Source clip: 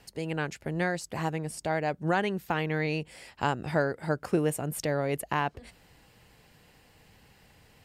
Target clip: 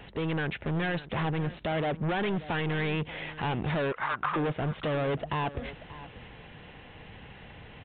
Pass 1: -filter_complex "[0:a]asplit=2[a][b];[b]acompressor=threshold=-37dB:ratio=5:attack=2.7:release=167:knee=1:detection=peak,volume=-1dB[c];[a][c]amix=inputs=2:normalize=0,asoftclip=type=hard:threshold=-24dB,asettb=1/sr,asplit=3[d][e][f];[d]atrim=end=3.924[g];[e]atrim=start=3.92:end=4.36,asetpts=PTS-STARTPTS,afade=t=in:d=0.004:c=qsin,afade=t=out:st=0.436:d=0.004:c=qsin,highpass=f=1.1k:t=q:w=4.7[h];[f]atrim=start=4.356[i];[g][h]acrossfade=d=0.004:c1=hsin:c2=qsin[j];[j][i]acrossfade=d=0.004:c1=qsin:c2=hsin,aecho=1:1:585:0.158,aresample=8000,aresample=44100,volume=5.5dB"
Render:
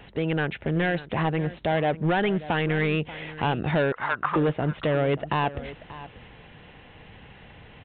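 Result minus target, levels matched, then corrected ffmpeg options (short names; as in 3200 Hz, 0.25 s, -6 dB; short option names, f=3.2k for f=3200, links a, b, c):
hard clip: distortion -6 dB
-filter_complex "[0:a]asplit=2[a][b];[b]acompressor=threshold=-37dB:ratio=5:attack=2.7:release=167:knee=1:detection=peak,volume=-1dB[c];[a][c]amix=inputs=2:normalize=0,asoftclip=type=hard:threshold=-32.5dB,asettb=1/sr,asplit=3[d][e][f];[d]atrim=end=3.924[g];[e]atrim=start=3.92:end=4.36,asetpts=PTS-STARTPTS,afade=t=in:d=0.004:c=qsin,afade=t=out:st=0.436:d=0.004:c=qsin,highpass=f=1.1k:t=q:w=4.7[h];[f]atrim=start=4.356[i];[g][h]acrossfade=d=0.004:c1=hsin:c2=qsin[j];[j][i]acrossfade=d=0.004:c1=qsin:c2=hsin,aecho=1:1:585:0.158,aresample=8000,aresample=44100,volume=5.5dB"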